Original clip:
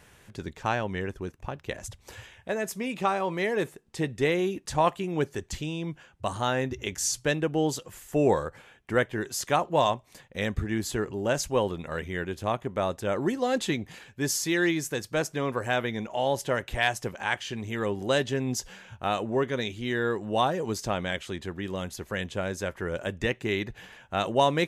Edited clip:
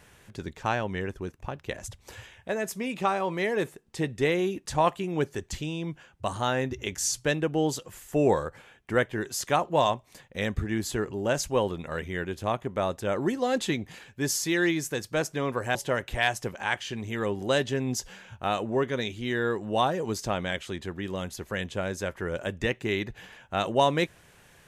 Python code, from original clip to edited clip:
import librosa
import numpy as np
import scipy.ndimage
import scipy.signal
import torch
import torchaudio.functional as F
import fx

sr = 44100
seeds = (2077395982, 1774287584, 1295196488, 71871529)

y = fx.edit(x, sr, fx.cut(start_s=15.75, length_s=0.6), tone=tone)